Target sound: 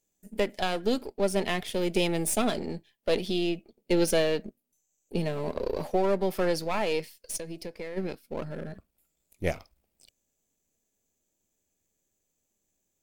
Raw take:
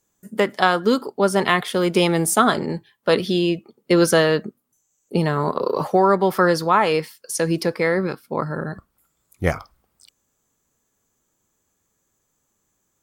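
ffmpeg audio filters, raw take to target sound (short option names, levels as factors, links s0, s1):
-filter_complex "[0:a]aeval=exprs='if(lt(val(0),0),0.447*val(0),val(0))':c=same,equalizer=f=1200:w=1.3:g=-12.5,asplit=3[s0][s1][s2];[s0]afade=t=out:st=7.36:d=0.02[s3];[s1]acompressor=threshold=0.0282:ratio=6,afade=t=in:st=7.36:d=0.02,afade=t=out:st=7.96:d=0.02[s4];[s2]afade=t=in:st=7.96:d=0.02[s5];[s3][s4][s5]amix=inputs=3:normalize=0,equalizer=f=125:t=o:w=0.33:g=-11,equalizer=f=630:t=o:w=0.33:g=5,equalizer=f=2500:t=o:w=0.33:g=4,volume=0.596"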